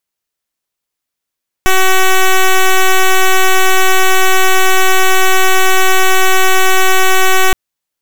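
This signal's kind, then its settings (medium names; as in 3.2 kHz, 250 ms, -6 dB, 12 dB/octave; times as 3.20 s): pulse 377 Hz, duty 8% -7 dBFS 5.87 s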